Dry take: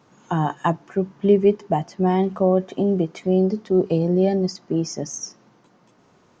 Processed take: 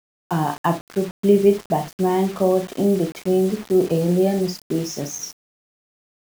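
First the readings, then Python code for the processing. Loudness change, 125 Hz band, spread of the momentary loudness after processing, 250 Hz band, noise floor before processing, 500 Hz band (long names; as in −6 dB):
+0.5 dB, −0.5 dB, 10 LU, +0.5 dB, −58 dBFS, +1.0 dB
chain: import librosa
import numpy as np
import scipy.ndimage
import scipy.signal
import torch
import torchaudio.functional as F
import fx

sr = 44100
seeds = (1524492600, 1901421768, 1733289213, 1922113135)

y = fx.room_early_taps(x, sr, ms=(35, 63), db=(-8.0, -12.0))
y = fx.quant_dither(y, sr, seeds[0], bits=6, dither='none')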